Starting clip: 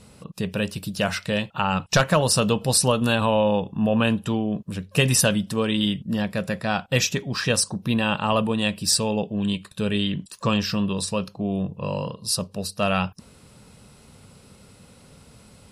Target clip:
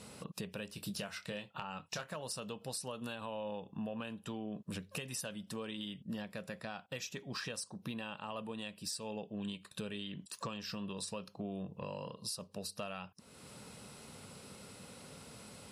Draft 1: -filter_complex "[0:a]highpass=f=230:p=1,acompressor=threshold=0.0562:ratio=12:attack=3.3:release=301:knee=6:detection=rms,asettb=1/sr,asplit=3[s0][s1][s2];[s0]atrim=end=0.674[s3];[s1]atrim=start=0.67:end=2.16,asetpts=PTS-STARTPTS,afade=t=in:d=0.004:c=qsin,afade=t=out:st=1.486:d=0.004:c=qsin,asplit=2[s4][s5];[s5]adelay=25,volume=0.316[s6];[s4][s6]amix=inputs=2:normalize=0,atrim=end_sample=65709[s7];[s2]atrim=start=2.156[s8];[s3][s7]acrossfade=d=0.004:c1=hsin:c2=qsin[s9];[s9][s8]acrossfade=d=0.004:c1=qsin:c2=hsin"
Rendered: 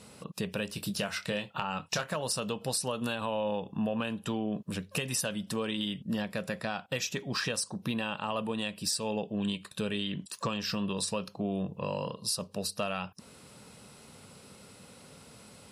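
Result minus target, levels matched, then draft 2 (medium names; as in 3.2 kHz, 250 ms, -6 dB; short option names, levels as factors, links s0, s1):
compression: peak gain reduction -9.5 dB
-filter_complex "[0:a]highpass=f=230:p=1,acompressor=threshold=0.0168:ratio=12:attack=3.3:release=301:knee=6:detection=rms,asettb=1/sr,asplit=3[s0][s1][s2];[s0]atrim=end=0.674[s3];[s1]atrim=start=0.67:end=2.16,asetpts=PTS-STARTPTS,afade=t=in:d=0.004:c=qsin,afade=t=out:st=1.486:d=0.004:c=qsin,asplit=2[s4][s5];[s5]adelay=25,volume=0.316[s6];[s4][s6]amix=inputs=2:normalize=0,atrim=end_sample=65709[s7];[s2]atrim=start=2.156[s8];[s3][s7]acrossfade=d=0.004:c1=hsin:c2=qsin[s9];[s9][s8]acrossfade=d=0.004:c1=qsin:c2=hsin"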